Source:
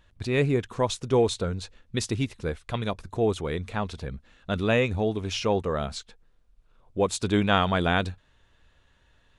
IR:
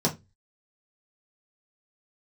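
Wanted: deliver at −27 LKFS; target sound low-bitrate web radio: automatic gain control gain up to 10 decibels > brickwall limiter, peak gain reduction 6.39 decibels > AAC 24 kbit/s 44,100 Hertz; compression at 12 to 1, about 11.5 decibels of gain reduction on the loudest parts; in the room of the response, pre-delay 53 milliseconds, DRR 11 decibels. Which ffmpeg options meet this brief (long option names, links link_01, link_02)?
-filter_complex "[0:a]acompressor=threshold=-29dB:ratio=12,asplit=2[link_01][link_02];[1:a]atrim=start_sample=2205,adelay=53[link_03];[link_02][link_03]afir=irnorm=-1:irlink=0,volume=-22dB[link_04];[link_01][link_04]amix=inputs=2:normalize=0,dynaudnorm=maxgain=10dB,alimiter=level_in=1dB:limit=-24dB:level=0:latency=1,volume=-1dB,volume=8dB" -ar 44100 -c:a aac -b:a 24k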